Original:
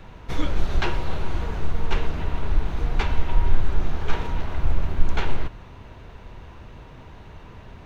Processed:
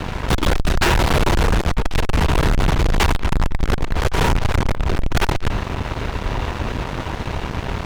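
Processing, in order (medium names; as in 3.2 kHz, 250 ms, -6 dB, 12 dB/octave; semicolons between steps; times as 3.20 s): Chebyshev shaper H 3 -37 dB, 4 -22 dB, 5 -9 dB, 8 -16 dB, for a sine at -3.5 dBFS; fuzz box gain 28 dB, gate -36 dBFS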